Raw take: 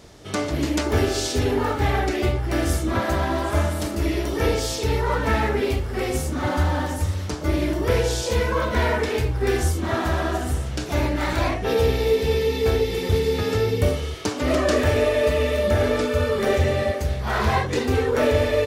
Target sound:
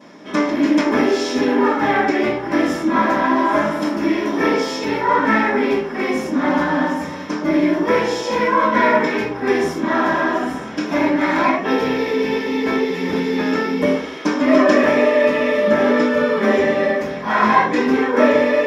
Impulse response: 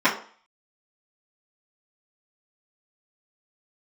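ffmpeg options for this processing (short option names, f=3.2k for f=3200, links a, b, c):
-filter_complex "[1:a]atrim=start_sample=2205[a];[0:a][a]afir=irnorm=-1:irlink=0,volume=-12dB"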